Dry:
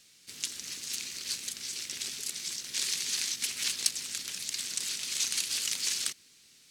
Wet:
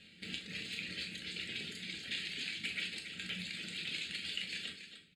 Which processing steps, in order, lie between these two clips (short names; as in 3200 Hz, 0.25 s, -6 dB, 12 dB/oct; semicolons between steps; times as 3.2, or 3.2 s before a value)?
reverb removal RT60 1.8 s; bell 190 Hz +9 dB 0.48 oct; notches 50/100/150/200/250/300/350 Hz; compressor 12:1, threshold -37 dBFS, peak gain reduction 16.5 dB; tempo 1.3×; air absorption 150 m; fixed phaser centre 2500 Hz, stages 4; on a send: loudspeakers at several distances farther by 13 m -11 dB, 96 m -9 dB; on the sum: non-linear reverb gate 0.14 s falling, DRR 2 dB; gain +9 dB